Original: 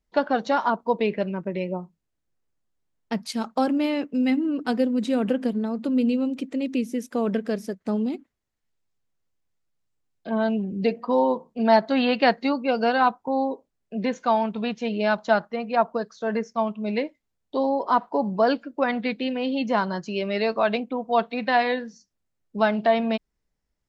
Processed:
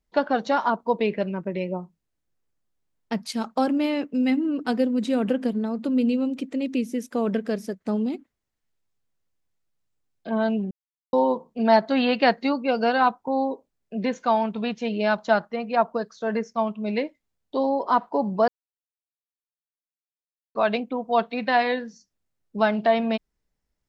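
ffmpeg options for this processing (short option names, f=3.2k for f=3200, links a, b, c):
-filter_complex "[0:a]asplit=5[a][b][c][d][e];[a]atrim=end=10.71,asetpts=PTS-STARTPTS,afade=t=out:st=10.706:d=0.004:c=hsin[f];[b]atrim=start=10.71:end=11.13,asetpts=PTS-STARTPTS,volume=0[g];[c]atrim=start=11.13:end=18.48,asetpts=PTS-STARTPTS,afade=t=in:d=0.004:c=hsin,afade=t=out:st=7.346:d=0.004:c=hsin[h];[d]atrim=start=18.48:end=20.55,asetpts=PTS-STARTPTS,volume=0[i];[e]atrim=start=20.55,asetpts=PTS-STARTPTS,afade=t=in:d=0.004:c=hsin[j];[f][g][h][i][j]concat=n=5:v=0:a=1"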